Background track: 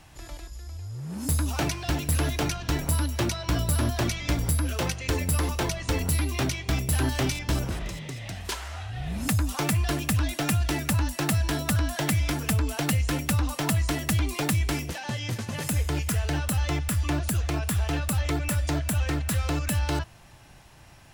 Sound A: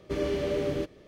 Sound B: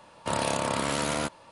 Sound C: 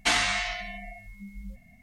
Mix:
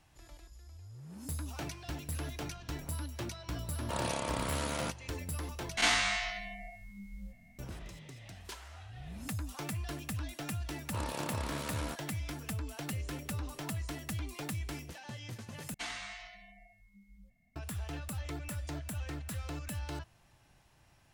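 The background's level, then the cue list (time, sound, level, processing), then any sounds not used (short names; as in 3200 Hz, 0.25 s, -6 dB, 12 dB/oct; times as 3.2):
background track -13.5 dB
3.63 add B -8 dB
5.77 replace with C -5.5 dB + spectral swells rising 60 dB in 0.48 s
10.67 add B -12 dB + Doppler distortion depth 0.19 ms
12.79 add A -13 dB + compressor, threshold -41 dBFS
15.74 replace with C -17 dB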